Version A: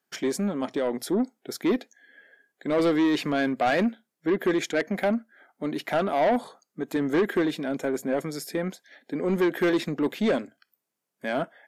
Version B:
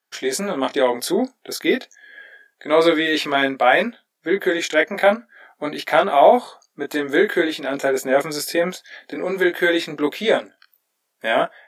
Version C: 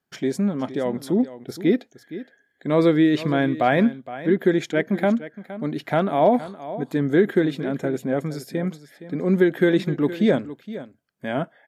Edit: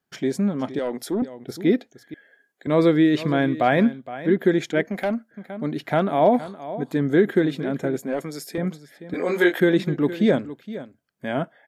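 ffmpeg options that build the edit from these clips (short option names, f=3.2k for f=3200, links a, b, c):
-filter_complex "[0:a]asplit=4[a][b][c][d];[2:a]asplit=6[e][f][g][h][i][j];[e]atrim=end=0.792[k];[a]atrim=start=0.788:end=1.222[l];[f]atrim=start=1.218:end=2.142[m];[b]atrim=start=2.138:end=2.672[n];[g]atrim=start=2.668:end=4.852[o];[c]atrim=start=4.848:end=5.312[p];[h]atrim=start=5.308:end=7.992[q];[d]atrim=start=7.988:end=8.582[r];[i]atrim=start=8.578:end=9.142[s];[1:a]atrim=start=9.138:end=9.602[t];[j]atrim=start=9.598[u];[k][l]acrossfade=d=0.004:c1=hsin:c2=hsin[v];[v][m]acrossfade=d=0.004:c1=hsin:c2=hsin[w];[w][n]acrossfade=d=0.004:c1=hsin:c2=hsin[x];[x][o]acrossfade=d=0.004:c1=hsin:c2=hsin[y];[y][p]acrossfade=d=0.004:c1=hsin:c2=hsin[z];[z][q]acrossfade=d=0.004:c1=hsin:c2=hsin[aa];[aa][r]acrossfade=d=0.004:c1=hsin:c2=hsin[ab];[ab][s]acrossfade=d=0.004:c1=hsin:c2=hsin[ac];[ac][t]acrossfade=d=0.004:c1=hsin:c2=hsin[ad];[ad][u]acrossfade=d=0.004:c1=hsin:c2=hsin"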